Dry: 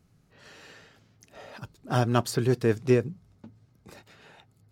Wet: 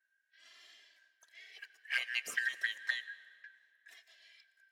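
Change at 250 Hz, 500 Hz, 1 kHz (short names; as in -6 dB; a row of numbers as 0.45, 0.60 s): under -40 dB, -37.0 dB, -25.5 dB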